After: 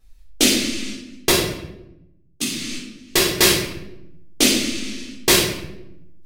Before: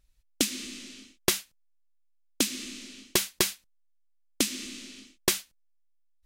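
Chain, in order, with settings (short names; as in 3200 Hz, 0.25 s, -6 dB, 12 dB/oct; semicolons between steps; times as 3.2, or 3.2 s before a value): dynamic EQ 3000 Hz, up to +3 dB, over -39 dBFS, Q 1.2; 0.92–3.35 level quantiser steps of 21 dB; shoebox room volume 260 m³, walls mixed, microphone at 3.8 m; gain +2 dB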